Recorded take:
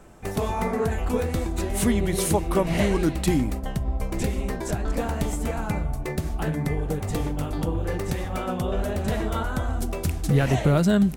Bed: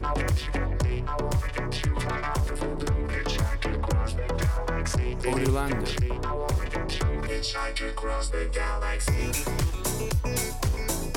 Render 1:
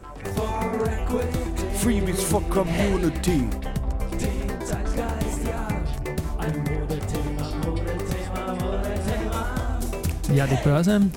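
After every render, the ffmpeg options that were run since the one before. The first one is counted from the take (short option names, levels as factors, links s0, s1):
-filter_complex "[1:a]volume=0.237[s0];[0:a][s0]amix=inputs=2:normalize=0"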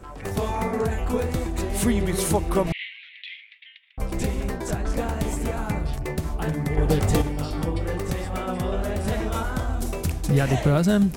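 -filter_complex "[0:a]asettb=1/sr,asplit=3[s0][s1][s2];[s0]atrim=end=2.724[s3];[s1]atrim=start=2.72:end=3.98,asetpts=PTS-STARTPTS,afade=t=in:d=0.004:c=qsin,afade=t=out:st=1.256:d=0.004:c=qsin,asuperpass=centerf=2700:order=8:qfactor=1.6[s4];[s2]atrim=start=3.976[s5];[s3][s4]acrossfade=d=0.004:c1=hsin:c2=qsin[s6];[s6][s5]acrossfade=d=0.004:c1=qsin:c2=hsin,asettb=1/sr,asplit=3[s7][s8][s9];[s7]atrim=end=6.774[s10];[s8]atrim=start=6.77:end=7.22,asetpts=PTS-STARTPTS,afade=t=in:d=0.004:c=qsin,afade=t=out:st=0.446:d=0.004:c=qsin,acontrast=74[s11];[s9]atrim=start=7.216[s12];[s10][s11]acrossfade=d=0.004:c1=hsin:c2=qsin[s13];[s13][s12]acrossfade=d=0.004:c1=qsin:c2=hsin"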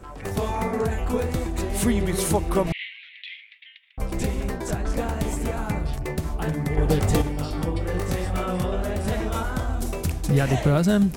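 -filter_complex "[0:a]asettb=1/sr,asplit=3[s0][s1][s2];[s0]atrim=end=7.924[s3];[s1]atrim=start=7.92:end=8.66,asetpts=PTS-STARTPTS,afade=t=in:d=0.004:c=qsin,afade=t=out:st=0.736:d=0.004:c=qsin,asplit=2[s4][s5];[s5]adelay=22,volume=0.708[s6];[s4][s6]amix=inputs=2:normalize=0,atrim=end_sample=32634[s7];[s2]atrim=start=8.656[s8];[s3][s7]acrossfade=d=0.004:c1=hsin:c2=qsin[s9];[s9][s8]acrossfade=d=0.004:c1=qsin:c2=hsin"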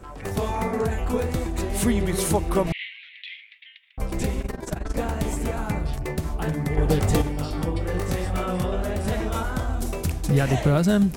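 -filter_complex "[0:a]asplit=3[s0][s1][s2];[s0]afade=t=out:st=4.4:d=0.02[s3];[s1]tremolo=f=22:d=0.824,afade=t=in:st=4.4:d=0.02,afade=t=out:st=4.95:d=0.02[s4];[s2]afade=t=in:st=4.95:d=0.02[s5];[s3][s4][s5]amix=inputs=3:normalize=0"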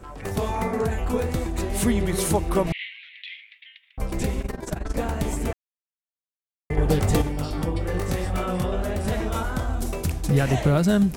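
-filter_complex "[0:a]asplit=3[s0][s1][s2];[s0]atrim=end=5.53,asetpts=PTS-STARTPTS,afade=t=out:st=5.526:d=0.004:c=hsin[s3];[s1]atrim=start=5.53:end=6.7,asetpts=PTS-STARTPTS,volume=0[s4];[s2]atrim=start=6.7,asetpts=PTS-STARTPTS,afade=t=in:d=0.004:c=hsin[s5];[s3][s4][s5]concat=n=3:v=0:a=1"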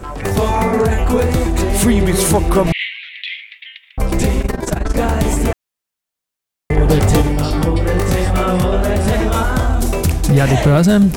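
-filter_complex "[0:a]asplit=2[s0][s1];[s1]alimiter=limit=0.1:level=0:latency=1,volume=0.891[s2];[s0][s2]amix=inputs=2:normalize=0,acontrast=77"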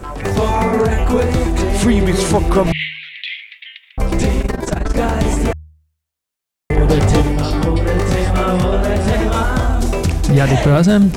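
-filter_complex "[0:a]acrossover=split=8100[s0][s1];[s1]acompressor=threshold=0.00794:ratio=4:attack=1:release=60[s2];[s0][s2]amix=inputs=2:normalize=0,bandreject=f=77.48:t=h:w=4,bandreject=f=154.96:t=h:w=4"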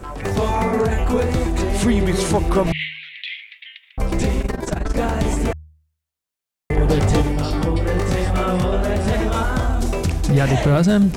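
-af "volume=0.631"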